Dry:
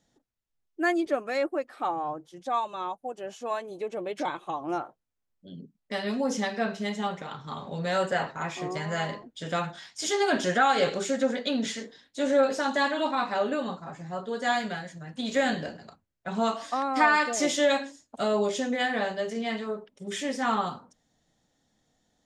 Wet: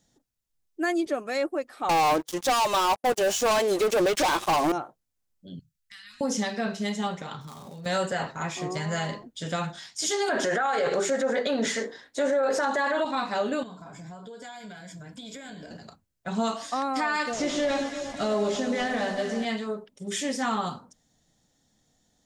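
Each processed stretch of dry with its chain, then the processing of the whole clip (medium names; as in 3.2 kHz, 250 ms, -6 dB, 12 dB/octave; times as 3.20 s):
1.89–4.72 s: high-pass 350 Hz + waveshaping leveller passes 5
5.59–6.21 s: Chebyshev band-stop 110–1400 Hz, order 3 + compression 2.5:1, threshold -50 dBFS
7.41–7.86 s: dead-time distortion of 0.092 ms + compression 12:1, threshold -40 dBFS
10.29–13.05 s: high-order bell 850 Hz +11 dB 2.9 oct + hum notches 60/120/180/240/300/360 Hz
13.63–15.71 s: rippled EQ curve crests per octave 1.7, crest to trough 9 dB + compression, threshold -41 dBFS
17.26–19.45 s: one-bit delta coder 64 kbps, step -41.5 dBFS + Bessel low-pass 5.6 kHz, order 4 + echo whose repeats swap between lows and highs 115 ms, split 1.2 kHz, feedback 79%, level -8 dB
whole clip: tone controls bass +4 dB, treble +7 dB; peak limiter -18 dBFS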